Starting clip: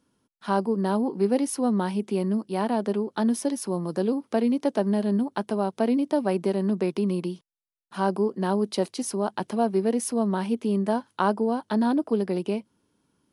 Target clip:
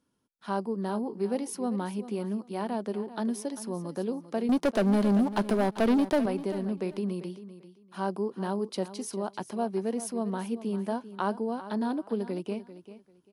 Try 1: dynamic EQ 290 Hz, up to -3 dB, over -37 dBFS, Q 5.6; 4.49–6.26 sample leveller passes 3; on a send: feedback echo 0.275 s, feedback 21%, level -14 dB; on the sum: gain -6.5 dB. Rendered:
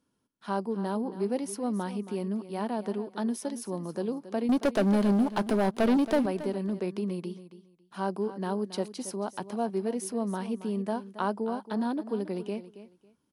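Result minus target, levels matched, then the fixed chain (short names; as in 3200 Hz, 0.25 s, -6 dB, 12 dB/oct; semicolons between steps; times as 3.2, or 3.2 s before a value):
echo 0.118 s early
dynamic EQ 290 Hz, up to -3 dB, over -37 dBFS, Q 5.6; 4.49–6.26 sample leveller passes 3; on a send: feedback echo 0.393 s, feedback 21%, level -14 dB; on the sum: gain -6.5 dB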